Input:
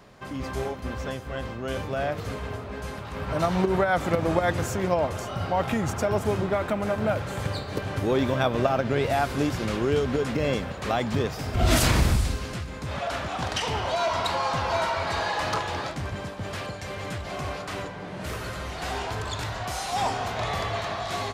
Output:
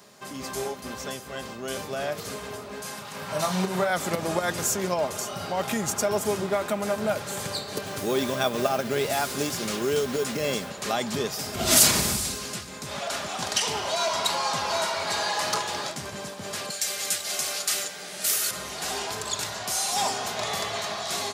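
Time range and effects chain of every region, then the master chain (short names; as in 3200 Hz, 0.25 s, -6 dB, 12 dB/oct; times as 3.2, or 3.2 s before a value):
2.82–3.9 HPF 97 Hz 24 dB/oct + bell 340 Hz -6 dB 0.8 oct + doubler 33 ms -6.5 dB
7.85–10.68 notch 910 Hz, Q 24 + modulation noise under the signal 32 dB
16.7–18.51 tilt +3.5 dB/oct + notch 1000 Hz, Q 5.7
whole clip: HPF 120 Hz 12 dB/oct; tone controls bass -3 dB, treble +14 dB; comb 4.9 ms, depth 33%; gain -2 dB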